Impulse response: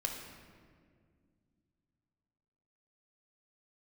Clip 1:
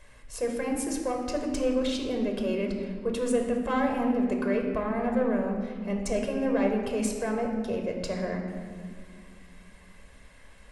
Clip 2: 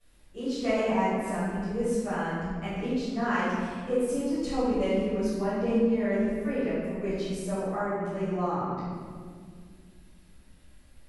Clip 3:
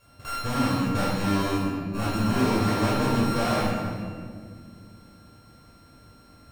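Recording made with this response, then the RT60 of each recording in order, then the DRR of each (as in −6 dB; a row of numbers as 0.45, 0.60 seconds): 1; 2.0, 2.0, 2.0 seconds; 2.0, −16.5, −7.0 decibels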